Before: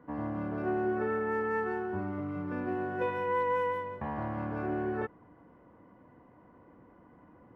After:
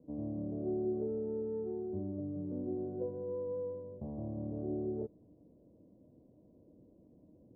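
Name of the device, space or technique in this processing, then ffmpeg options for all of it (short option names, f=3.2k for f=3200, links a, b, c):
under water: -af "lowpass=f=470:w=0.5412,lowpass=f=470:w=1.3066,equalizer=f=620:t=o:w=0.2:g=11,volume=-3dB"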